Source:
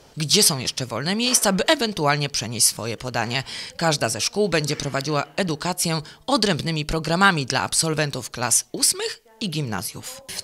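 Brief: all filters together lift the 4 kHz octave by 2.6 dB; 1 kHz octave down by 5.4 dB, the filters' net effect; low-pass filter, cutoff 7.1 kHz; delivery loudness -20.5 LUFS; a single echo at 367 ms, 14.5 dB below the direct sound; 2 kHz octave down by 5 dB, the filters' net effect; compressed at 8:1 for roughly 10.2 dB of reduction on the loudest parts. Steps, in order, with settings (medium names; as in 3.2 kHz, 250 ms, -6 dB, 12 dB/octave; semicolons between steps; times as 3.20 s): low-pass 7.1 kHz; peaking EQ 1 kHz -6 dB; peaking EQ 2 kHz -6 dB; peaking EQ 4 kHz +5.5 dB; compression 8:1, threshold -23 dBFS; delay 367 ms -14.5 dB; trim +7 dB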